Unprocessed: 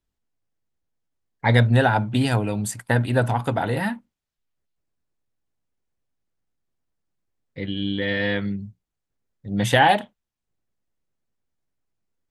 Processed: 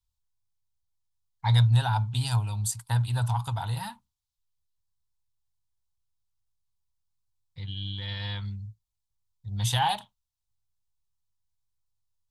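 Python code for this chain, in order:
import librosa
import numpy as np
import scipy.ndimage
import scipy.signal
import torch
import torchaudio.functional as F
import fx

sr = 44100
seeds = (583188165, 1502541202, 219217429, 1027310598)

y = fx.curve_eq(x, sr, hz=(110.0, 260.0, 560.0, 940.0, 1900.0, 3800.0), db=(0, -25, -24, -3, -18, 0))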